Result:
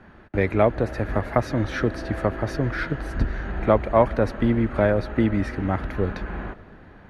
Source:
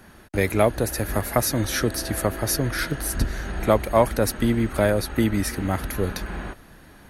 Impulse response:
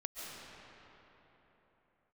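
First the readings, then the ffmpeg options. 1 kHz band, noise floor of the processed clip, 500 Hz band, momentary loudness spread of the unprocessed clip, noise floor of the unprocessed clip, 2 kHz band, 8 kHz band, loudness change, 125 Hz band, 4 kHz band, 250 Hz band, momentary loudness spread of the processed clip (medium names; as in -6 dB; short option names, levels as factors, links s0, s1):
+0.5 dB, -48 dBFS, +0.5 dB, 7 LU, -49 dBFS, -1.0 dB, under -20 dB, -0.5 dB, +0.5 dB, -10.5 dB, +0.5 dB, 8 LU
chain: -filter_complex "[0:a]lowpass=2200,asplit=2[s0][s1];[1:a]atrim=start_sample=2205[s2];[s1][s2]afir=irnorm=-1:irlink=0,volume=0.106[s3];[s0][s3]amix=inputs=2:normalize=0"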